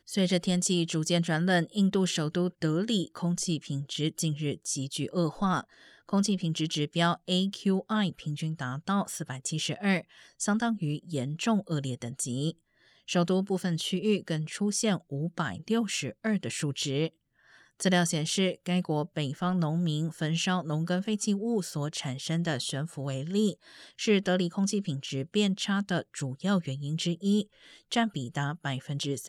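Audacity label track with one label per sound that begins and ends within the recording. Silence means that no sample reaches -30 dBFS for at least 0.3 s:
6.130000	9.990000	sound
10.410000	12.500000	sound
13.090000	17.070000	sound
17.800000	23.510000	sound
24.010000	27.410000	sound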